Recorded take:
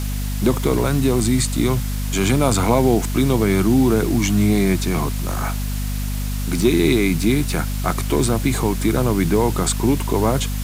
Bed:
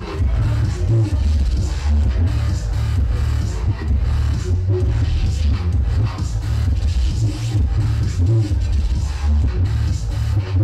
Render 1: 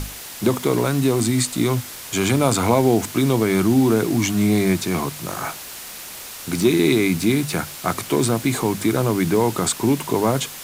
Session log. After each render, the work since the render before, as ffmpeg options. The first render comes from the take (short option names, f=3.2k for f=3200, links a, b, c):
-af "bandreject=f=50:t=h:w=6,bandreject=f=100:t=h:w=6,bandreject=f=150:t=h:w=6,bandreject=f=200:t=h:w=6,bandreject=f=250:t=h:w=6"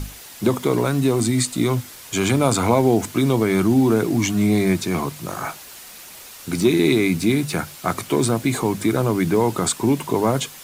-af "afftdn=nr=6:nf=-36"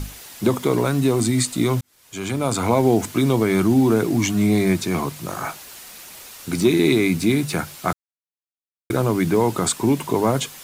-filter_complex "[0:a]asplit=4[a][b][c][d];[a]atrim=end=1.81,asetpts=PTS-STARTPTS,afade=t=out:st=1.806:d=0.004:c=hsin[e];[b]atrim=start=1.81:end=7.93,asetpts=PTS-STARTPTS,afade=t=in:d=1.06,afade=t=out:st=6.116:d=0.004:c=hsin[f];[c]atrim=start=7.93:end=8.9,asetpts=PTS-STARTPTS,volume=0[g];[d]atrim=start=8.9,asetpts=PTS-STARTPTS,afade=t=in:d=0.004:c=hsin[h];[e][f][g][h]concat=n=4:v=0:a=1"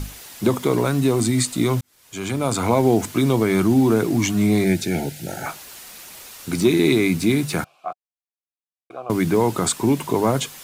-filter_complex "[0:a]asettb=1/sr,asplit=3[a][b][c];[a]atrim=end=4.644[d];[b]atrim=start=4.64:end=5.46,asetpts=PTS-STARTPTS,afade=t=in:d=0.004:c=qsin,afade=t=out:st=0.816:d=0.004:c=qsin,asuperstop=centerf=1100:order=20:qfactor=2.5[e];[c]atrim=start=5.456[f];[d][e]acrossfade=d=0.004:c1=hsin:c2=qsin[g];[g][f]acrossfade=d=0.004:c1=qsin:c2=hsin,asettb=1/sr,asplit=3[h][i][j];[h]atrim=end=7.644[k];[i]atrim=start=7.64:end=9.1,asetpts=PTS-STARTPTS,afade=t=in:d=0.004:c=qsin,afade=t=out:st=1.456:d=0.004:c=qsin,asplit=3[l][m][n];[l]bandpass=f=730:t=q:w=8,volume=0dB[o];[m]bandpass=f=1.09k:t=q:w=8,volume=-6dB[p];[n]bandpass=f=2.44k:t=q:w=8,volume=-9dB[q];[o][p][q]amix=inputs=3:normalize=0[r];[j]atrim=start=9.096[s];[k][r]acrossfade=d=0.004:c1=hsin:c2=qsin[t];[t][s]acrossfade=d=0.004:c1=qsin:c2=hsin"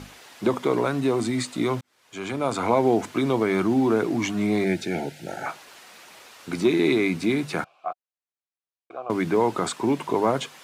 -af "highpass=f=430:p=1,aemphasis=mode=reproduction:type=75fm"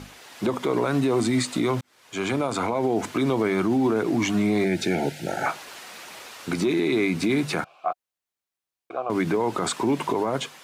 -af "dynaudnorm=f=150:g=5:m=6dB,alimiter=limit=-14.5dB:level=0:latency=1:release=106"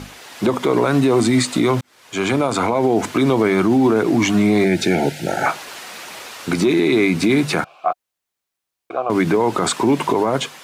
-af "volume=7dB"